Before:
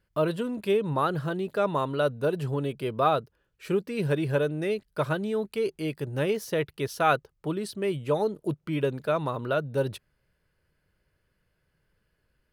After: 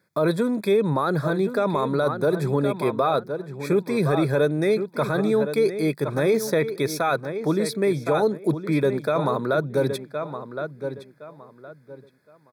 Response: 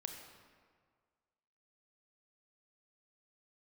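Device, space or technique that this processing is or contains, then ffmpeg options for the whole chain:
PA system with an anti-feedback notch: -filter_complex "[0:a]highpass=f=140:w=0.5412,highpass=f=140:w=1.3066,asuperstop=centerf=2900:order=12:qfactor=3.9,asplit=2[s0][s1];[s1]adelay=1065,lowpass=f=3200:p=1,volume=0.282,asplit=2[s2][s3];[s3]adelay=1065,lowpass=f=3200:p=1,volume=0.25,asplit=2[s4][s5];[s5]adelay=1065,lowpass=f=3200:p=1,volume=0.25[s6];[s0][s2][s4][s6]amix=inputs=4:normalize=0,alimiter=limit=0.0944:level=0:latency=1:release=15,volume=2.51"

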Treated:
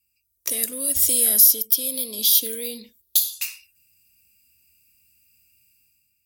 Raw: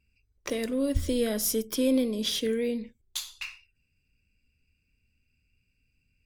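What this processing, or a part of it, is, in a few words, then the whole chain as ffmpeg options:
FM broadcast chain: -filter_complex "[0:a]asettb=1/sr,asplit=3[s0][s1][s2];[s0]atrim=end=1.394[s3];[s1]atrim=start=1.39:end=3.33,asetpts=PTS-STARTPTS,afade=t=in:d=0.004:c=qsin,afade=t=out:st=1.936:d=0.004:c=qsin,equalizer=f=125:t=o:w=1:g=-9,equalizer=f=2000:t=o:w=1:g=-7,equalizer=f=4000:t=o:w=1:g=8,equalizer=f=8000:t=o:w=1:g=-9[s4];[s2]atrim=start=3.326[s5];[s3][s4]acrossfade=d=0.004:c1=hsin:c2=qsin[s6];[s6][s5]acrossfade=d=0.004:c1=qsin:c2=hsin,highpass=66,dynaudnorm=f=120:g=9:m=3.76,acrossover=split=500|6200[s7][s8][s9];[s7]acompressor=threshold=0.0631:ratio=4[s10];[s8]acompressor=threshold=0.0631:ratio=4[s11];[s9]acompressor=threshold=0.0355:ratio=4[s12];[s10][s11][s12]amix=inputs=3:normalize=0,aemphasis=mode=production:type=75fm,alimiter=limit=0.631:level=0:latency=1:release=493,asoftclip=type=hard:threshold=0.473,lowpass=f=15000:w=0.5412,lowpass=f=15000:w=1.3066,aemphasis=mode=production:type=75fm,volume=0.266"

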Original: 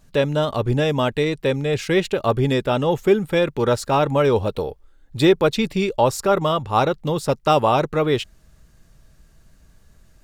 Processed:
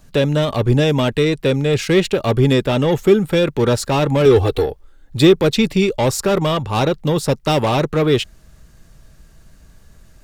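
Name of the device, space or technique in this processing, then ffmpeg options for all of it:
one-band saturation: -filter_complex "[0:a]asettb=1/sr,asplit=3[s0][s1][s2];[s0]atrim=end=4.254[s3];[s1]atrim=start=4.25:end=4.66,asetpts=PTS-STARTPTS,afade=t=in:d=0.004:c=qsin,afade=t=out:st=0.406:d=0.004:c=qsin,aecho=1:1:2.6:0.97,atrim=end_sample=18081[s4];[s2]atrim=start=4.656[s5];[s3][s4]acrossfade=d=0.004:c1=hsin:c2=qsin[s6];[s6][s5]acrossfade=d=0.004:c1=qsin:c2=hsin,acrossover=split=420|2700[s7][s8][s9];[s8]asoftclip=type=tanh:threshold=0.0562[s10];[s7][s10][s9]amix=inputs=3:normalize=0,volume=2"

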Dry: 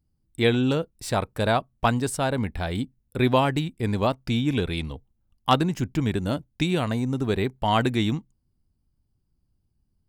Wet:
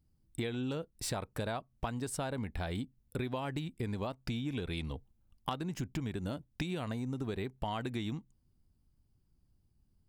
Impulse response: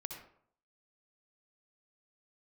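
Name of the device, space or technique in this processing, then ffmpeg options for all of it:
serial compression, leveller first: -af "acompressor=threshold=0.0631:ratio=2.5,acompressor=threshold=0.0178:ratio=4"

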